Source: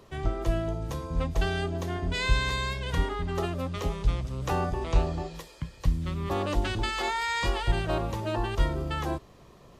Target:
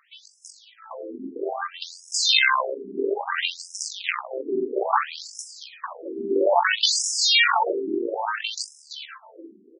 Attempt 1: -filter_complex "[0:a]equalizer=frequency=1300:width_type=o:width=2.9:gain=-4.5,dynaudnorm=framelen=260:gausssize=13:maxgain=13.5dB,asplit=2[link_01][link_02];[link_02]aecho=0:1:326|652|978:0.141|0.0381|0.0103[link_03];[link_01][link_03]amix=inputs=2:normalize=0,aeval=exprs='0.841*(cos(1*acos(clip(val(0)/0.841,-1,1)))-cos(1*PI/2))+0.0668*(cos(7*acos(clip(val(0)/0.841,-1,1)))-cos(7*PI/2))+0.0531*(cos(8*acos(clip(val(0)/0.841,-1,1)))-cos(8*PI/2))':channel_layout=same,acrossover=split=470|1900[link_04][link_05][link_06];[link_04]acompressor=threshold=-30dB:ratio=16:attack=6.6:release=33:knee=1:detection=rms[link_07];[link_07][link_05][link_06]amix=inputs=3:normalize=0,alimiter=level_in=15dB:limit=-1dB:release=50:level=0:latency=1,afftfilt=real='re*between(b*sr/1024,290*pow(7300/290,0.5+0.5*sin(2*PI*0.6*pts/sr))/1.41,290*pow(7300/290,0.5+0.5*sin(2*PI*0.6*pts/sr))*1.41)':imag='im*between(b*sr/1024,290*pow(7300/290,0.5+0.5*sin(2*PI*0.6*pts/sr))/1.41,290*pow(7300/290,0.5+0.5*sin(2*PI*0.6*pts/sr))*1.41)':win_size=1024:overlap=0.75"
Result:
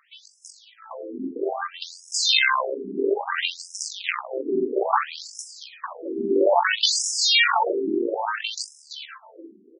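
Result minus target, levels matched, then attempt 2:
downward compressor: peak gain reduction −6.5 dB
-filter_complex "[0:a]equalizer=frequency=1300:width_type=o:width=2.9:gain=-4.5,dynaudnorm=framelen=260:gausssize=13:maxgain=13.5dB,asplit=2[link_01][link_02];[link_02]aecho=0:1:326|652|978:0.141|0.0381|0.0103[link_03];[link_01][link_03]amix=inputs=2:normalize=0,aeval=exprs='0.841*(cos(1*acos(clip(val(0)/0.841,-1,1)))-cos(1*PI/2))+0.0668*(cos(7*acos(clip(val(0)/0.841,-1,1)))-cos(7*PI/2))+0.0531*(cos(8*acos(clip(val(0)/0.841,-1,1)))-cos(8*PI/2))':channel_layout=same,acrossover=split=470|1900[link_04][link_05][link_06];[link_04]acompressor=threshold=-37dB:ratio=16:attack=6.6:release=33:knee=1:detection=rms[link_07];[link_07][link_05][link_06]amix=inputs=3:normalize=0,alimiter=level_in=15dB:limit=-1dB:release=50:level=0:latency=1,afftfilt=real='re*between(b*sr/1024,290*pow(7300/290,0.5+0.5*sin(2*PI*0.6*pts/sr))/1.41,290*pow(7300/290,0.5+0.5*sin(2*PI*0.6*pts/sr))*1.41)':imag='im*between(b*sr/1024,290*pow(7300/290,0.5+0.5*sin(2*PI*0.6*pts/sr))/1.41,290*pow(7300/290,0.5+0.5*sin(2*PI*0.6*pts/sr))*1.41)':win_size=1024:overlap=0.75"

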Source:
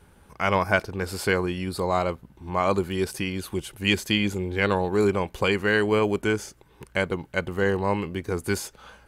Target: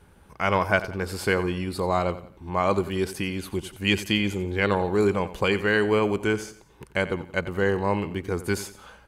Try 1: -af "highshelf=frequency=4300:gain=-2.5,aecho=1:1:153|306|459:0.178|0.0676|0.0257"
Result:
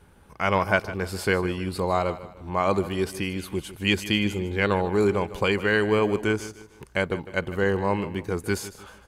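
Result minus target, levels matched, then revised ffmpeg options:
echo 64 ms late
-af "highshelf=frequency=4300:gain=-2.5,aecho=1:1:89|178|267:0.178|0.0676|0.0257"

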